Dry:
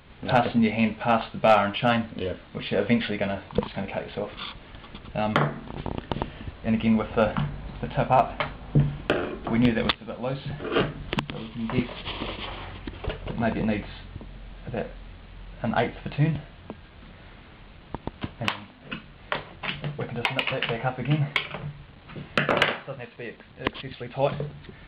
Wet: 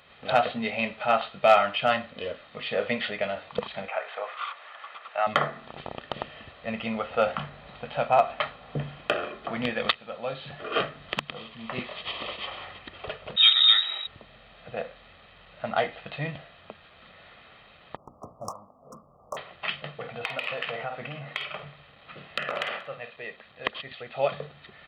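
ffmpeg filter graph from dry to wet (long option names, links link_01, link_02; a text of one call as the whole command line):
ffmpeg -i in.wav -filter_complex "[0:a]asettb=1/sr,asplit=3[link_01][link_02][link_03];[link_01]atrim=end=3.884[link_04];[link_02]atrim=start=3.88:end=5.27,asetpts=PTS-STARTPTS,afade=type=in:duration=0.004:curve=qsin,afade=type=out:start_time=1.386:duration=0.004:curve=qsin,highpass=680,lowpass=4800,equalizer=frequency=1200:width_type=o:width=1.9:gain=8,acrossover=split=2800[link_05][link_06];[link_06]acompressor=threshold=-54dB:ratio=4:attack=1:release=60[link_07];[link_05][link_07]amix=inputs=2:normalize=0[link_08];[link_03]atrim=start=5.266[link_09];[link_04][link_08]acrossfade=duration=0.004:curve1=hsin:curve2=qsin[link_10];[link_10][link_09]acrossfade=duration=0.004:curve1=qsin:curve2=hsin,asettb=1/sr,asplit=3[link_11][link_12][link_13];[link_11]atrim=end=13.364[link_14];[link_12]atrim=start=13.36:end=14.07,asetpts=PTS-STARTPTS,afade=type=in:duration=0.004:curve=qsin,afade=type=out:start_time=0.706:duration=0.004:curve=qsin,lowpass=frequency=3300:width_type=q:width=0.5098,lowpass=frequency=3300:width_type=q:width=0.6013,lowpass=frequency=3300:width_type=q:width=0.9,lowpass=frequency=3300:width_type=q:width=2.563,afreqshift=-3900,acontrast=31[link_15];[link_13]atrim=start=14.066[link_16];[link_14][link_15]acrossfade=duration=0.004:curve1=hsin:curve2=qsin[link_17];[link_17][link_16]acrossfade=duration=0.004:curve1=qsin:curve2=hsin,asettb=1/sr,asplit=3[link_18][link_19][link_20];[link_18]atrim=end=17.964[link_21];[link_19]atrim=start=17.96:end=19.37,asetpts=PTS-STARTPTS,afade=type=in:duration=0.004:curve=qsin,afade=type=out:start_time=1.406:duration=0.004:curve=qsin,bandreject=frequency=60:width_type=h:width=6,bandreject=frequency=120:width_type=h:width=6,bandreject=frequency=180:width_type=h:width=6,bandreject=frequency=240:width_type=h:width=6,bandreject=frequency=300:width_type=h:width=6,aeval=exprs='clip(val(0),-1,0.0355)':channel_layout=same,asuperstop=centerf=2600:order=20:qfactor=0.61[link_22];[link_20]atrim=start=19.366[link_23];[link_21][link_22]acrossfade=duration=0.004:curve1=hsin:curve2=qsin[link_24];[link_24][link_23]acrossfade=duration=0.004:curve1=qsin:curve2=hsin,asettb=1/sr,asplit=3[link_25][link_26][link_27];[link_25]atrim=end=19.944[link_28];[link_26]atrim=start=19.94:end=23.16,asetpts=PTS-STARTPTS,afade=type=in:duration=0.004:curve=qsin,afade=type=out:start_time=3.216:duration=0.004:curve=qsin,asplit=2[link_29][link_30];[link_30]adelay=50,volume=-11.5dB[link_31];[link_29][link_31]amix=inputs=2:normalize=0,atrim=end_sample=142002,acompressor=threshold=-26dB:ratio=4:attack=3.2:release=140:knee=1:detection=peak,aecho=1:1:185:0.0891,atrim=end_sample=142002[link_32];[link_27]atrim=start=23.156[link_33];[link_28][link_32]acrossfade=duration=0.004:curve1=hsin:curve2=qsin[link_34];[link_34][link_33]acrossfade=duration=0.004:curve1=qsin:curve2=hsin,highpass=frequency=620:poles=1,aecho=1:1:1.6:0.45" out.wav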